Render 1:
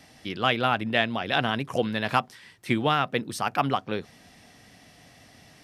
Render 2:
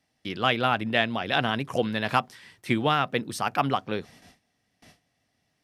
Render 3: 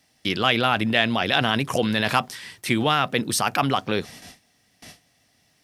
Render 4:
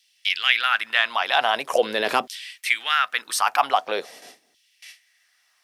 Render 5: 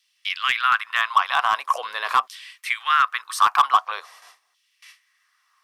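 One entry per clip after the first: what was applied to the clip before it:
gate with hold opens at -41 dBFS
high shelf 3100 Hz +8 dB; in parallel at -2 dB: negative-ratio compressor -30 dBFS, ratio -1
LFO high-pass saw down 0.44 Hz 330–3200 Hz; gain -1.5 dB
resonant high-pass 1100 Hz, resonance Q 7.9; overloaded stage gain 3 dB; gain -5.5 dB

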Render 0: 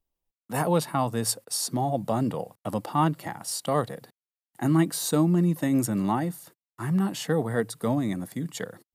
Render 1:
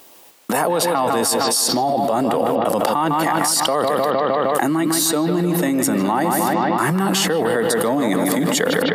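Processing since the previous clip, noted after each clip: HPF 330 Hz 12 dB/oct; analogue delay 0.154 s, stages 4096, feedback 58%, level -9 dB; fast leveller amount 100%; gain +3 dB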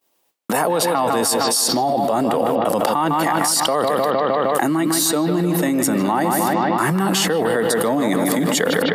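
expander -33 dBFS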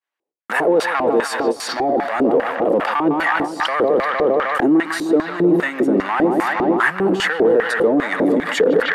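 notch 5300 Hz, Q 25; sample leveller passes 3; LFO band-pass square 2.5 Hz 390–1700 Hz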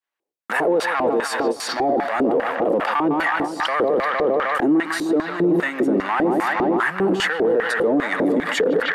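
limiter -10 dBFS, peak gain reduction 5 dB; gain -1 dB

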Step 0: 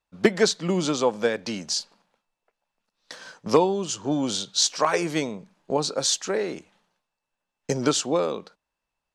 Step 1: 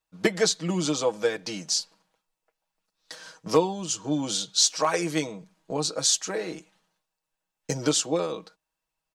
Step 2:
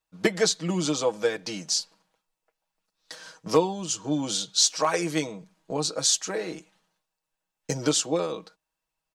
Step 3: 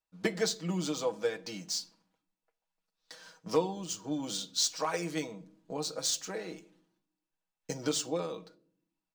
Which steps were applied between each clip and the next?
high shelf 5500 Hz +8.5 dB; comb 6.3 ms, depth 70%; gain -5 dB
nothing audible
median filter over 3 samples; reverb RT60 0.60 s, pre-delay 4 ms, DRR 11 dB; gain -8 dB

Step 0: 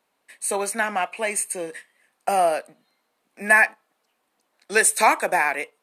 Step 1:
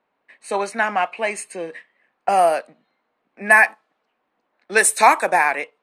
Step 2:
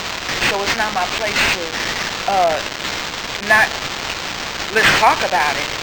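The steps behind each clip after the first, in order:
low-pass opened by the level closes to 2200 Hz, open at -14.5 dBFS; dynamic EQ 1000 Hz, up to +4 dB, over -29 dBFS, Q 1.1; gain +1.5 dB
switching spikes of -9.5 dBFS; decimation joined by straight lines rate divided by 4×

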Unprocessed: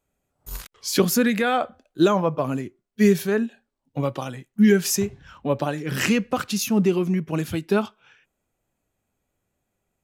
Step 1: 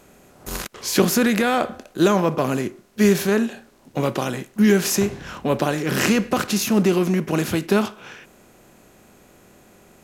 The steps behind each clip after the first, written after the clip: per-bin compression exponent 0.6; gain -1 dB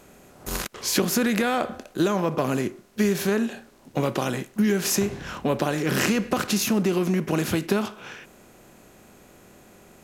compressor 4:1, threshold -19 dBFS, peak gain reduction 7.5 dB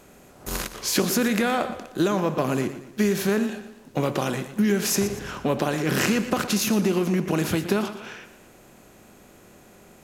warbling echo 0.117 s, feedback 43%, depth 73 cents, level -12.5 dB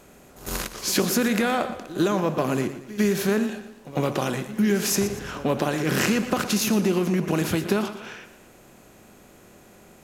pre-echo 0.101 s -17 dB

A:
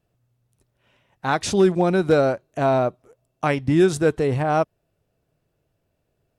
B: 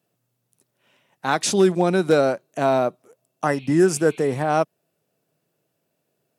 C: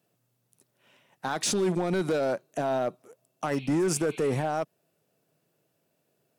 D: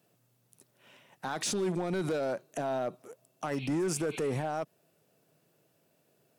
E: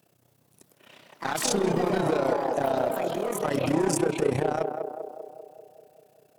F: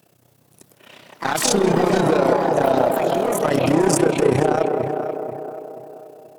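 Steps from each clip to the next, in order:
spectral repair 3.47–4.43, 2100–4500 Hz; HPF 150 Hz 24 dB/oct; high shelf 5500 Hz +9 dB
limiter -17 dBFS, peak gain reduction 11 dB; hard clip -21 dBFS, distortion -16 dB
limiter -29.5 dBFS, peak gain reduction 8.5 dB; gain +3.5 dB
AM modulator 31 Hz, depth 75%; narrowing echo 0.196 s, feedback 66%, band-pass 540 Hz, level -4 dB; echoes that change speed 0.231 s, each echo +4 st, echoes 3, each echo -6 dB; gain +8.5 dB
tape echo 0.482 s, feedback 42%, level -6 dB, low-pass 1600 Hz; gain +7.5 dB

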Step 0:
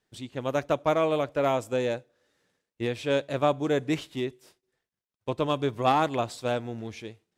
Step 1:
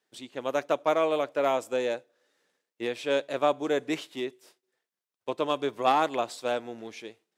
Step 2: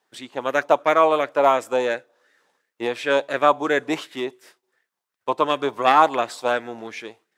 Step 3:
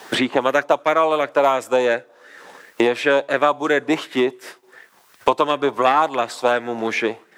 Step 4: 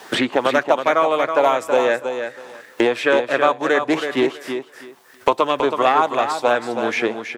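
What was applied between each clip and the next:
HPF 310 Hz 12 dB/oct
LFO bell 2.8 Hz 830–1900 Hz +12 dB; gain +4.5 dB
three-band squash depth 100%; gain +2 dB
feedback echo 0.324 s, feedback 19%, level -7.5 dB; Doppler distortion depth 0.12 ms

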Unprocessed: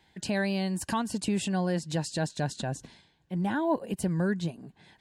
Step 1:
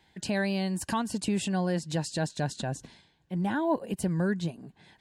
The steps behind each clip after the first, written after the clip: nothing audible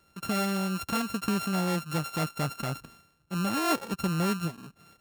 sample sorter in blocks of 32 samples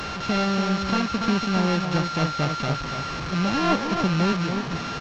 delta modulation 32 kbps, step -30.5 dBFS; outdoor echo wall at 49 m, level -6 dB; gain +5.5 dB

